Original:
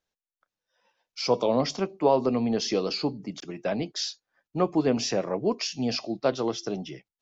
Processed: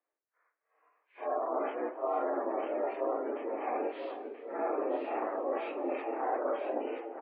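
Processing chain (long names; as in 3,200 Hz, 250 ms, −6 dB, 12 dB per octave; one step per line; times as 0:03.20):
random phases in long frames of 200 ms
pitch-shifted copies added −7 semitones 0 dB
single-tap delay 452 ms −19.5 dB
formants moved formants +5 semitones
reversed playback
downward compressor, threshold −29 dBFS, peak gain reduction 15.5 dB
reversed playback
single-sideband voice off tune +110 Hz 180–2,400 Hz
gate on every frequency bin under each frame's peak −30 dB strong
on a send: single-tap delay 980 ms −6.5 dB
on the sum: low-pass that shuts in the quiet parts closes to 1,800 Hz, open at −31 dBFS
feedback echo with a swinging delay time 80 ms, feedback 73%, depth 79 cents, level −19.5 dB
level −1 dB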